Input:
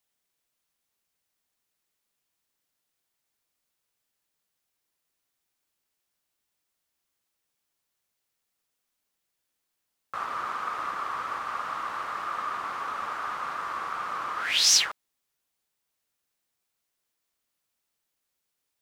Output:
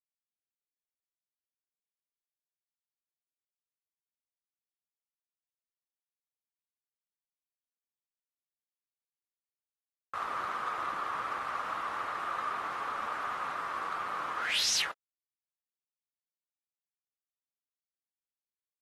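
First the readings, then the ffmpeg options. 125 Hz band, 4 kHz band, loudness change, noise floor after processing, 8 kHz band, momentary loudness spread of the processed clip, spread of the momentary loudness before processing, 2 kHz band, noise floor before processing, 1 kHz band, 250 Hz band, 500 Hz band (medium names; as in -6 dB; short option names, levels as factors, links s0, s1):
no reading, -7.5 dB, -5.5 dB, under -85 dBFS, -10.0 dB, 8 LU, 12 LU, -3.0 dB, -81 dBFS, -3.0 dB, -1.0 dB, -0.5 dB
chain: -filter_complex "[0:a]bandreject=f=50:t=h:w=6,bandreject=f=100:t=h:w=6,bandreject=f=150:t=h:w=6,bandreject=f=200:t=h:w=6,bandreject=f=250:t=h:w=6,acrossover=split=4100[s0][s1];[s0]dynaudnorm=f=910:g=9:m=1.41[s2];[s2][s1]amix=inputs=2:normalize=0,acrusher=bits=8:mix=0:aa=0.000001,volume=10.6,asoftclip=hard,volume=0.0944,volume=0.501" -ar 44100 -c:a aac -b:a 32k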